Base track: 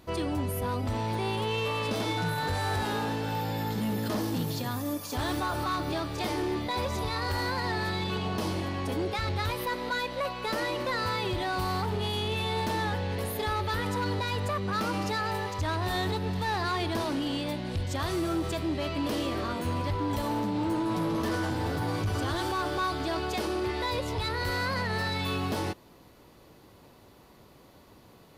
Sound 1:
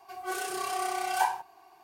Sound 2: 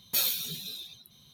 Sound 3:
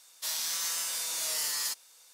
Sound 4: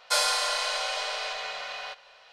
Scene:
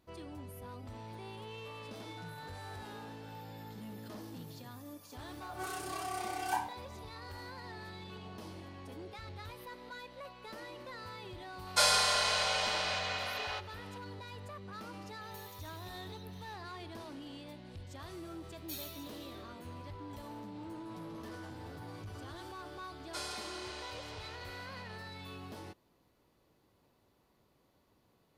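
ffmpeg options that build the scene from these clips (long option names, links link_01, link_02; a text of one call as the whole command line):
ffmpeg -i bed.wav -i cue0.wav -i cue1.wav -i cue2.wav -i cue3.wav -filter_complex "[4:a]asplit=2[link_01][link_02];[2:a]asplit=2[link_03][link_04];[0:a]volume=-16.5dB[link_05];[link_03]acompressor=threshold=-50dB:ratio=6:attack=3.2:release=140:knee=1:detection=peak[link_06];[1:a]atrim=end=1.83,asetpts=PTS-STARTPTS,volume=-7.5dB,afade=type=in:duration=0.004:curve=hsin,afade=type=out:start_time=1.826:duration=0.004:curve=hsin,adelay=5320[link_07];[link_01]atrim=end=2.32,asetpts=PTS-STARTPTS,volume=-2dB,afade=type=in:duration=0.004:curve=hsin,afade=type=out:start_time=2.316:duration=0.004:curve=hsin,adelay=11660[link_08];[link_06]atrim=end=1.33,asetpts=PTS-STARTPTS,volume=-3.5dB,afade=type=in:duration=0.004:curve=hsin,afade=type=out:start_time=1.326:duration=0.004:curve=hsin,adelay=15210[link_09];[link_04]atrim=end=1.33,asetpts=PTS-STARTPTS,volume=-17.5dB,afade=type=in:duration=0.004:curve=hsin,afade=type=out:start_time=1.326:duration=0.004:curve=hsin,adelay=18550[link_10];[link_02]atrim=end=2.32,asetpts=PTS-STARTPTS,volume=-17.5dB,afade=type=in:duration=0.004:curve=hsin,afade=type=out:start_time=2.316:duration=0.004:curve=hsin,adelay=23030[link_11];[link_05][link_07][link_08][link_09][link_10][link_11]amix=inputs=6:normalize=0" out.wav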